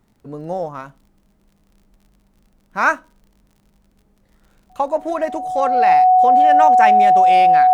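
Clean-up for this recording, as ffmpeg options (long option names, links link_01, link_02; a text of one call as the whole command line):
ffmpeg -i in.wav -af "adeclick=threshold=4,bandreject=frequency=740:width=30" out.wav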